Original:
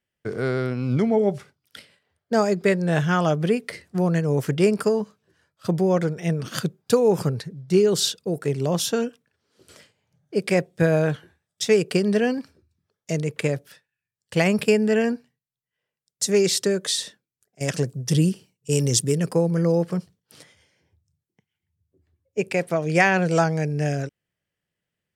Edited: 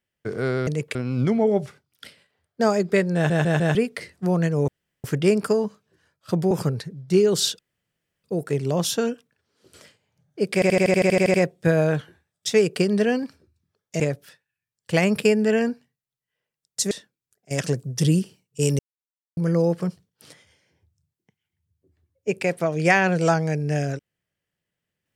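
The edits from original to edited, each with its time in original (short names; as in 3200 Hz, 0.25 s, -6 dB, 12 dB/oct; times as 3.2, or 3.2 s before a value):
2.87 stutter in place 0.15 s, 4 plays
4.4 insert room tone 0.36 s
5.87–7.11 cut
8.19 insert room tone 0.65 s
10.49 stutter 0.08 s, 11 plays
13.15–13.43 move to 0.67
16.34–17.01 cut
18.89–19.47 mute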